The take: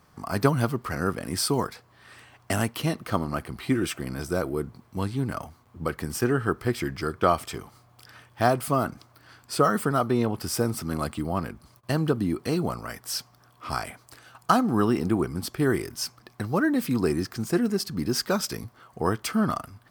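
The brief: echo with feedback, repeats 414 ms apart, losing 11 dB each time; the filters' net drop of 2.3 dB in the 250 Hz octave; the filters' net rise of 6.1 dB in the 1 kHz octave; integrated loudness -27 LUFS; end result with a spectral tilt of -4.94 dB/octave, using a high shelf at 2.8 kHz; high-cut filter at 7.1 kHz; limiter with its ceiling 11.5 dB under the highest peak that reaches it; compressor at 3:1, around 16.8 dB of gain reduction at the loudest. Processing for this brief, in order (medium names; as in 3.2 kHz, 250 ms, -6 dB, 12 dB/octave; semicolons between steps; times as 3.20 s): low-pass 7.1 kHz; peaking EQ 250 Hz -3.5 dB; peaking EQ 1 kHz +9 dB; treble shelf 2.8 kHz -3.5 dB; compression 3:1, threshold -34 dBFS; peak limiter -26.5 dBFS; feedback delay 414 ms, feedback 28%, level -11 dB; trim +12 dB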